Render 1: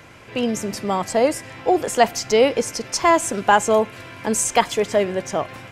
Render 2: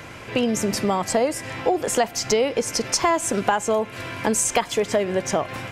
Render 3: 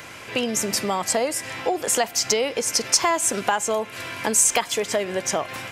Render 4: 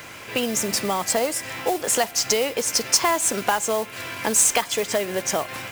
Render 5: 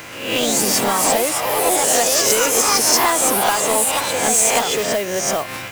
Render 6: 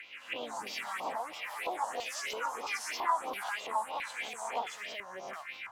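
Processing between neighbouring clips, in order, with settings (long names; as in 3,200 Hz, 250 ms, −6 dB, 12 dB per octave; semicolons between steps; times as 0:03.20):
downward compressor 6 to 1, threshold −24 dBFS, peak gain reduction 14.5 dB; level +6 dB
spectral tilt +2 dB per octave; level −1 dB
noise that follows the level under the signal 13 dB
peak hold with a rise ahead of every peak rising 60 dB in 0.65 s; in parallel at −7 dB: wave folding −18 dBFS; on the sum: delay with pitch and tempo change per echo 126 ms, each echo +3 semitones, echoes 3; level −1 dB
auto-filter band-pass square 1.5 Hz 990–2,200 Hz; all-pass phaser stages 4, 3.1 Hz, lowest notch 370–1,800 Hz; level −6 dB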